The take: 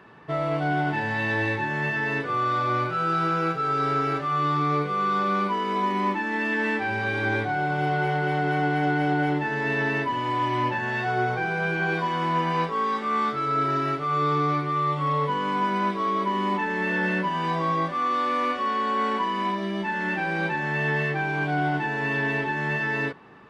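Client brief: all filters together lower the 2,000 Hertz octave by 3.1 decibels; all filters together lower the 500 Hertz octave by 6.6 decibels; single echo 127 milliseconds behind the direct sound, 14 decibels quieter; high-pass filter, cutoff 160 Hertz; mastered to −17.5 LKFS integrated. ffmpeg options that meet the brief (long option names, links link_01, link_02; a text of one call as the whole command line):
ffmpeg -i in.wav -af "highpass=160,equalizer=frequency=500:width_type=o:gain=-8.5,equalizer=frequency=2000:width_type=o:gain=-3.5,aecho=1:1:127:0.2,volume=10.5dB" out.wav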